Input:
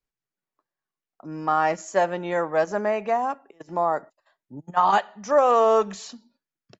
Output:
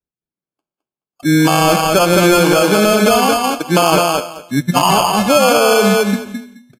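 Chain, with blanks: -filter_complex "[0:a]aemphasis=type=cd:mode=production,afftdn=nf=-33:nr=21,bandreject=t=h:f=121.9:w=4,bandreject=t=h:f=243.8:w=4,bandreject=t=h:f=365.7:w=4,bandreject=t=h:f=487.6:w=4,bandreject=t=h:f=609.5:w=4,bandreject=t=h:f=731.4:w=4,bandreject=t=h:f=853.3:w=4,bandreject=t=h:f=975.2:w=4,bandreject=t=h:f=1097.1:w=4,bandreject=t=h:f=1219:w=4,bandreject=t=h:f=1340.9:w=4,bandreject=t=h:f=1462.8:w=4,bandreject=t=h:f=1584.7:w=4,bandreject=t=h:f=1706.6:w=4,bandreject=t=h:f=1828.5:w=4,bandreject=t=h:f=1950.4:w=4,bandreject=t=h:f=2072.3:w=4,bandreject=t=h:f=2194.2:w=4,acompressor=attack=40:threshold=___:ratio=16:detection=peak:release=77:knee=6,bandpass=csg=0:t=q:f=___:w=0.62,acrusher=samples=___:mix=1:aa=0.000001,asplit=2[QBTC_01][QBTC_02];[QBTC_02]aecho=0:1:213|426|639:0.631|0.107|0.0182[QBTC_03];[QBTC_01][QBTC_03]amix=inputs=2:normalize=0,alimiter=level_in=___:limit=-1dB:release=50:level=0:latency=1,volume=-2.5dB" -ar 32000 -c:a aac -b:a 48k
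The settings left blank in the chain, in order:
-29dB, 200, 23, 27.5dB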